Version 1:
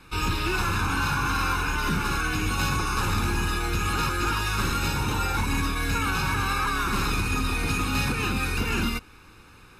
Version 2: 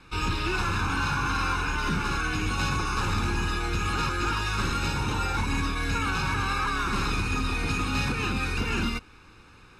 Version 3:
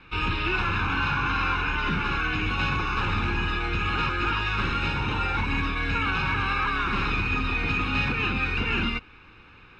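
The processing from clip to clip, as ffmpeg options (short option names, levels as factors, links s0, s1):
-af "lowpass=7600,volume=0.841"
-af "lowpass=f=2800:t=q:w=1.8"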